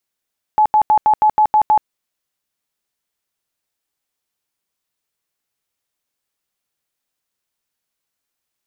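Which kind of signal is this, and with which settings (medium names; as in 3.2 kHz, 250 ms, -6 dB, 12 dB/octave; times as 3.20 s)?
tone bursts 855 Hz, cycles 66, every 0.16 s, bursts 8, -8.5 dBFS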